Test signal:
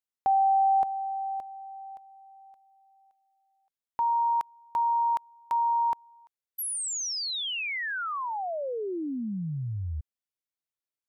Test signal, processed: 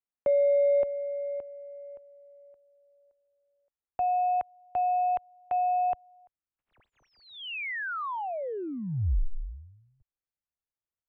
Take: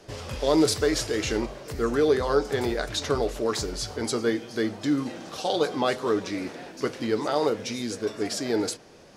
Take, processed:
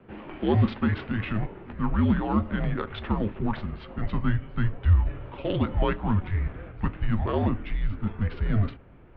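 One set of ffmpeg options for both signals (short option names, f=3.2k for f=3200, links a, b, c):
-af "adynamicsmooth=sensitivity=3:basefreq=2.3k,highpass=f=250:t=q:w=0.5412,highpass=f=250:t=q:w=1.307,lowpass=f=3.2k:t=q:w=0.5176,lowpass=f=3.2k:t=q:w=0.7071,lowpass=f=3.2k:t=q:w=1.932,afreqshift=-210,asubboost=boost=4:cutoff=100"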